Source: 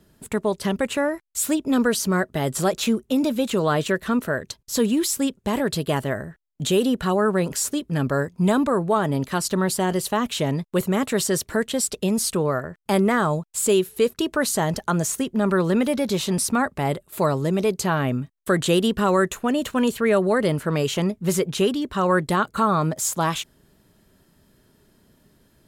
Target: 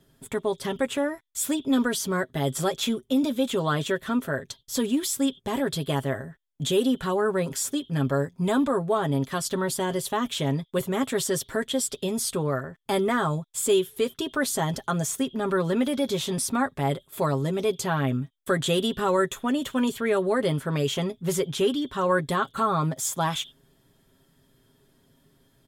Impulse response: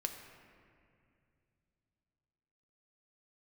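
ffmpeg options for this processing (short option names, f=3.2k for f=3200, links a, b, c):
-filter_complex "[0:a]aecho=1:1:7.4:0.57,asplit=2[a][b];[b]asuperpass=centerf=3400:order=4:qfactor=7.1[c];[1:a]atrim=start_sample=2205,atrim=end_sample=4410[d];[c][d]afir=irnorm=-1:irlink=0,volume=3.5dB[e];[a][e]amix=inputs=2:normalize=0,volume=-5dB"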